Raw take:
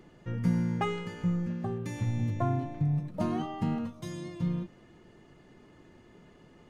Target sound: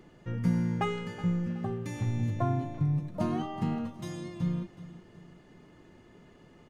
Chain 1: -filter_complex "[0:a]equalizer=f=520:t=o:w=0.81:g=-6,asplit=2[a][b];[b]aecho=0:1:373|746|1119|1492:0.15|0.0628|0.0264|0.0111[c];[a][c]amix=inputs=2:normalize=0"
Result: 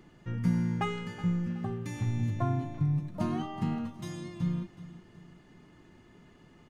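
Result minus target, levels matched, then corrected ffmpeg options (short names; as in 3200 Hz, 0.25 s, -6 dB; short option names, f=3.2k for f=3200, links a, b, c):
500 Hz band -2.5 dB
-filter_complex "[0:a]asplit=2[a][b];[b]aecho=0:1:373|746|1119|1492:0.15|0.0628|0.0264|0.0111[c];[a][c]amix=inputs=2:normalize=0"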